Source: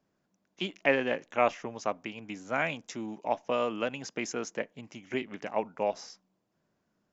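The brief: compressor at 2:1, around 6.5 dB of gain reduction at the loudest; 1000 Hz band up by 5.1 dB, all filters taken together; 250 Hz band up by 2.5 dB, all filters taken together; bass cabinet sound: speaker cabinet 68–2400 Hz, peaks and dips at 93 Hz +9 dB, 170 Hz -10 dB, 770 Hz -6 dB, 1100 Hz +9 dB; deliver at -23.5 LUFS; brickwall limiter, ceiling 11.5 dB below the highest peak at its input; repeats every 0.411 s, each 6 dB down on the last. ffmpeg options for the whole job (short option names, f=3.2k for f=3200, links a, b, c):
-af "equalizer=f=250:t=o:g=4,equalizer=f=1k:t=o:g=4,acompressor=threshold=-29dB:ratio=2,alimiter=level_in=0.5dB:limit=-24dB:level=0:latency=1,volume=-0.5dB,highpass=f=68:w=0.5412,highpass=f=68:w=1.3066,equalizer=f=93:t=q:w=4:g=9,equalizer=f=170:t=q:w=4:g=-10,equalizer=f=770:t=q:w=4:g=-6,equalizer=f=1.1k:t=q:w=4:g=9,lowpass=f=2.4k:w=0.5412,lowpass=f=2.4k:w=1.3066,aecho=1:1:411|822|1233|1644|2055|2466:0.501|0.251|0.125|0.0626|0.0313|0.0157,volume=14dB"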